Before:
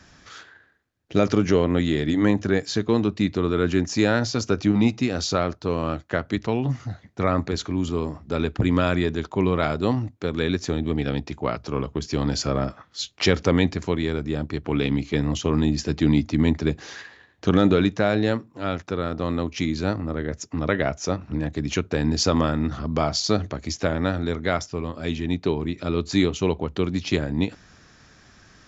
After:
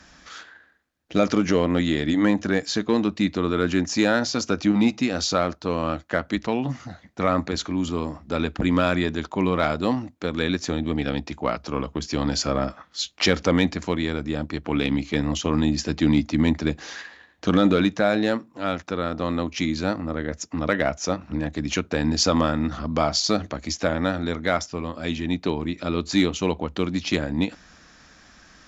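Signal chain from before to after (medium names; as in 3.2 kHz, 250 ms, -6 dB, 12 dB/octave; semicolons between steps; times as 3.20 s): peaking EQ 400 Hz -7.5 dB 0.27 oct; in parallel at -4 dB: one-sided clip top -13 dBFS; on the sum: peaking EQ 110 Hz -14 dB 0.65 oct; trim -2 dB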